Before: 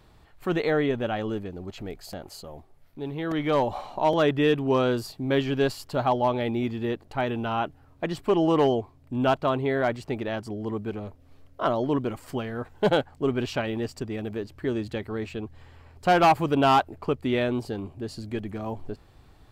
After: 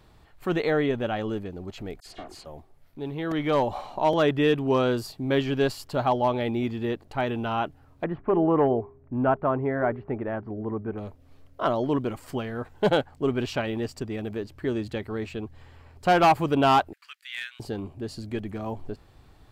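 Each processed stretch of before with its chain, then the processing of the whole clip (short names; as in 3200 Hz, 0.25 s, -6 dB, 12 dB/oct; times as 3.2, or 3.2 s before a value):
2–2.46 minimum comb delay 2.8 ms + LPF 8100 Hz + dispersion lows, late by 57 ms, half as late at 2400 Hz
8.04–10.98 LPF 1800 Hz 24 dB/oct + de-hum 202.7 Hz, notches 2
16.93–17.6 Chebyshev high-pass 1600 Hz, order 4 + overloaded stage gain 24 dB
whole clip: dry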